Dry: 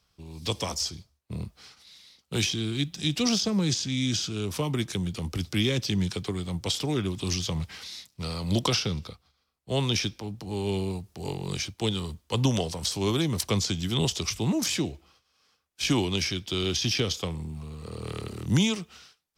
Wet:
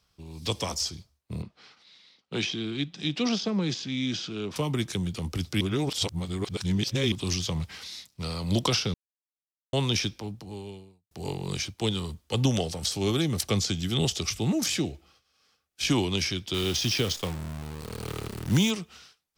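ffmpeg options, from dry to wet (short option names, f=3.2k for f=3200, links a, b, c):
-filter_complex "[0:a]asettb=1/sr,asplit=3[a][b][c];[a]atrim=end=1.424[d];[b]atrim=start=1.42:end=4.56,asetpts=PTS-STARTPTS,afade=t=in:d=0.004:c=qsin,afade=t=out:st=3.136:d=0.004:c=qsin,highpass=170,lowpass=3.8k[e];[c]atrim=start=4.556[f];[d][e]acrossfade=d=0.004:c1=hsin:c2=qsin[g];[g][f]acrossfade=d=0.004:c1=qsin:c2=hsin,asettb=1/sr,asplit=3[h][i][j];[h]atrim=end=12.274[k];[i]atrim=start=12.27:end=15.85,asetpts=PTS-STARTPTS,afade=t=in:d=0.004:c=qsin,afade=t=out:st=3.576:d=0.004:c=qsin,asuperstop=centerf=990:order=4:qfactor=6.4[l];[j]atrim=start=15.846[m];[k][l]acrossfade=d=0.004:c1=hsin:c2=qsin[n];[n][m]acrossfade=d=0.004:c1=qsin:c2=hsin,asettb=1/sr,asplit=3[o][p][q];[o]atrim=end=16.544[r];[p]atrim=start=16.54:end=18.71,asetpts=PTS-STARTPTS,afade=t=in:d=0.004:c=qsin,afade=t=out:st=2.166:d=0.004:c=qsin,acrusher=bits=7:dc=4:mix=0:aa=0.000001[s];[q]atrim=start=18.706[t];[r][s]acrossfade=d=0.004:c1=hsin:c2=qsin[u];[u][t]acrossfade=d=0.004:c1=qsin:c2=hsin,asplit=6[v][w][x][y][z][aa];[v]atrim=end=5.612[ab];[w]atrim=start=5.608:end=7.122,asetpts=PTS-STARTPTS,areverse[ac];[x]atrim=start=7.118:end=8.94,asetpts=PTS-STARTPTS,afade=t=out:st=1.818:d=0.004:c=hsin[ad];[y]atrim=start=8.94:end=9.73,asetpts=PTS-STARTPTS,volume=0[ae];[z]atrim=start=9.73:end=11.11,asetpts=PTS-STARTPTS,afade=t=in:d=0.004:c=hsin,afade=t=out:st=0.53:d=0.85:c=qua[af];[aa]atrim=start=11.11,asetpts=PTS-STARTPTS,afade=t=in:d=0.004:c=hsin[ag];[ab][ac]acrossfade=d=0.004:c1=hsin:c2=hsin[ah];[ad][ae][af][ag]concat=n=4:v=0:a=1[ai];[ah][ai]acrossfade=d=0.004:c1=hsin:c2=hsin"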